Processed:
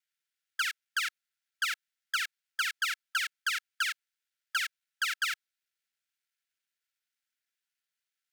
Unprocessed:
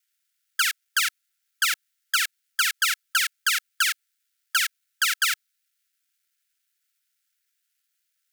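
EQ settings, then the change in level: treble shelf 5.9 kHz -11.5 dB; -6.0 dB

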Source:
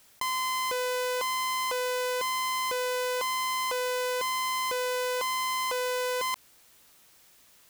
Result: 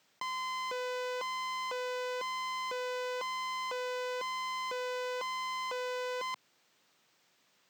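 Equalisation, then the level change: boxcar filter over 4 samples; high-pass 130 Hz 24 dB/octave; -6.5 dB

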